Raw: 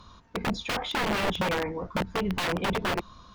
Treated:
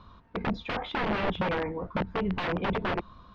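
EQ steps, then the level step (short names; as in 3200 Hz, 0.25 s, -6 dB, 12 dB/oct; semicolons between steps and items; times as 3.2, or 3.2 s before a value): air absorption 300 m; 0.0 dB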